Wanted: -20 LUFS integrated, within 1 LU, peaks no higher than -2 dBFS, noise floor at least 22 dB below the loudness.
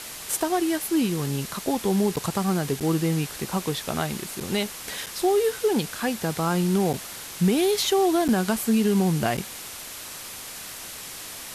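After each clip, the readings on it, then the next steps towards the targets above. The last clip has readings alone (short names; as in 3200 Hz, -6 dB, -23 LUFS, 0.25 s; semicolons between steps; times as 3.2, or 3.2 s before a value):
dropouts 7; longest dropout 7.3 ms; noise floor -38 dBFS; noise floor target -47 dBFS; loudness -25.0 LUFS; peak -10.5 dBFS; loudness target -20.0 LUFS
-> interpolate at 2.16/2.8/4.4/5.06/6.93/8.28/9.37, 7.3 ms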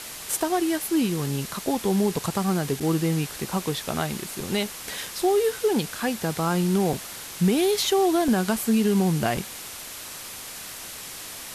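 dropouts 0; noise floor -38 dBFS; noise floor target -47 dBFS
-> denoiser 9 dB, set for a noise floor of -38 dBFS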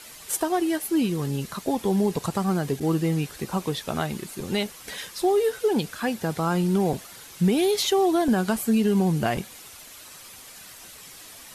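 noise floor -45 dBFS; noise floor target -47 dBFS
-> denoiser 6 dB, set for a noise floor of -45 dBFS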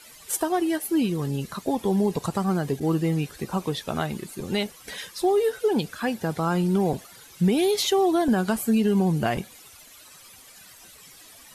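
noise floor -49 dBFS; loudness -25.0 LUFS; peak -11.5 dBFS; loudness target -20.0 LUFS
-> gain +5 dB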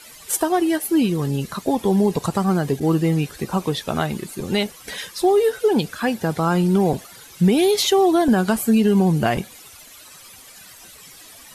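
loudness -20.0 LUFS; peak -6.5 dBFS; noise floor -44 dBFS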